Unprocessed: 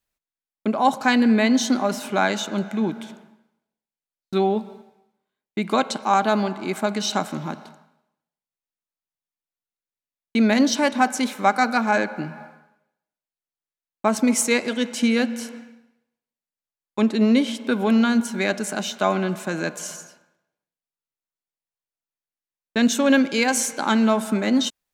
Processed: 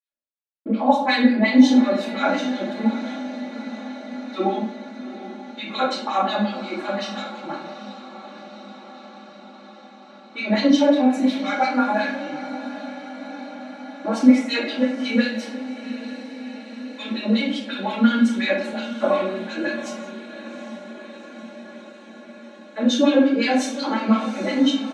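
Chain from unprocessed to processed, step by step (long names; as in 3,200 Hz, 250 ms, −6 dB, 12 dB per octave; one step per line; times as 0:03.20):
noise gate −49 dBFS, range −12 dB
auto-filter band-pass sine 5.6 Hz 280–4,000 Hz
comb filter 3.6 ms, depth 88%
feedback delay with all-pass diffusion 777 ms, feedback 72%, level −14 dB
rectangular room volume 77 cubic metres, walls mixed, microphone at 2.9 metres
level −8 dB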